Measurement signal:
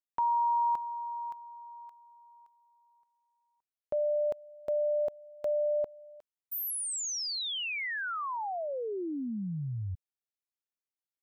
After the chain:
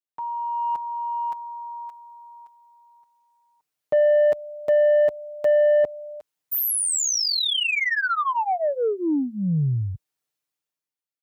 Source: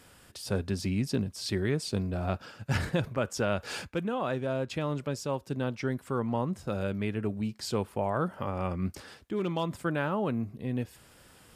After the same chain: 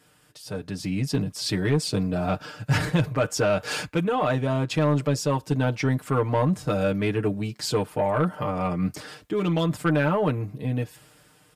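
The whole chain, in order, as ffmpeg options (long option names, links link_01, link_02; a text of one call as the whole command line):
ffmpeg -i in.wav -af "highpass=52,aecho=1:1:6.6:0.87,dynaudnorm=framelen=170:gausssize=11:maxgain=15dB,asoftclip=type=tanh:threshold=-7.5dB,volume=-5.5dB" out.wav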